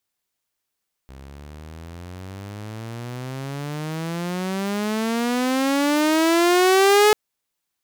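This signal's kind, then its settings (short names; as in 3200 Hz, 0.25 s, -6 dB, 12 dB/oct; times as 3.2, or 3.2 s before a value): gliding synth tone saw, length 6.04 s, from 65.5 Hz, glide +32.5 st, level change +27.5 dB, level -9 dB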